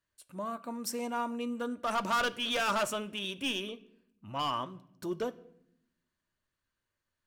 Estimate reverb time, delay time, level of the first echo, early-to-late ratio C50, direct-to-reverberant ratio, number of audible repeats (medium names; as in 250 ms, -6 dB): 0.75 s, no echo, no echo, 19.0 dB, 10.0 dB, no echo